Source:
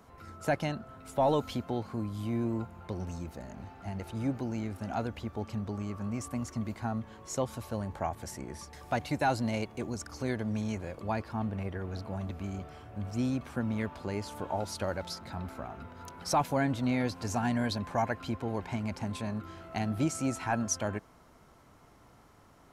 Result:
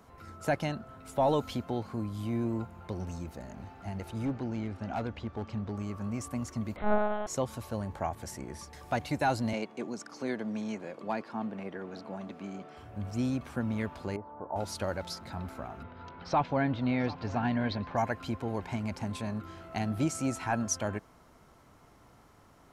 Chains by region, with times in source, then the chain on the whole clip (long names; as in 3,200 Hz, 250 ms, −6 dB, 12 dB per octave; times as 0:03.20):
0:04.25–0:05.77: low-pass filter 4,700 Hz + hard clipping −26.5 dBFS
0:06.76–0:07.27: parametric band 590 Hz +12 dB 0.66 octaves + flutter between parallel walls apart 4.4 metres, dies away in 1.5 s + one-pitch LPC vocoder at 8 kHz 210 Hz
0:09.53–0:12.77: high-pass filter 180 Hz 24 dB per octave + high-frequency loss of the air 54 metres + hard clipping −21 dBFS
0:14.16–0:14.56: low-pass filter 1,000 Hz 24 dB per octave + spectral tilt +3 dB per octave + one half of a high-frequency compander encoder only
0:15.83–0:17.97: low-pass filter 4,100 Hz 24 dB per octave + single-tap delay 736 ms −18 dB
whole clip: no processing